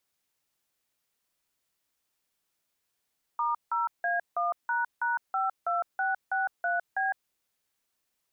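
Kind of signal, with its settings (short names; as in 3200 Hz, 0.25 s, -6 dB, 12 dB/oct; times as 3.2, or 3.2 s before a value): DTMF "*0A1##52663B", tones 0.158 s, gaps 0.167 s, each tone -28 dBFS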